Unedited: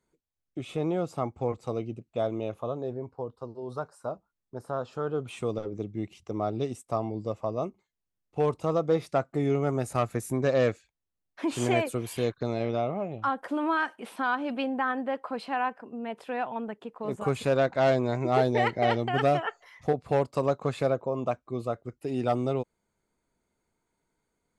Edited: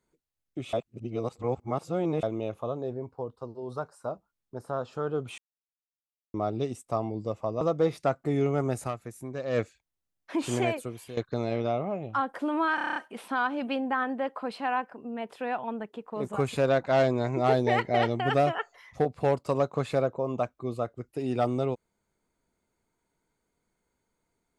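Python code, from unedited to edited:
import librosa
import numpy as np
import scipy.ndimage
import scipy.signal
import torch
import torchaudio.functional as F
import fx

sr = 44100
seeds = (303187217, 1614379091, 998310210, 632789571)

y = fx.edit(x, sr, fx.reverse_span(start_s=0.73, length_s=1.5),
    fx.silence(start_s=5.38, length_s=0.96),
    fx.cut(start_s=7.61, length_s=1.09),
    fx.fade_down_up(start_s=9.92, length_s=0.76, db=-10.0, fade_s=0.14, curve='qua'),
    fx.fade_out_to(start_s=11.55, length_s=0.71, floor_db=-14.5),
    fx.stutter(start_s=13.84, slice_s=0.03, count=8), tone=tone)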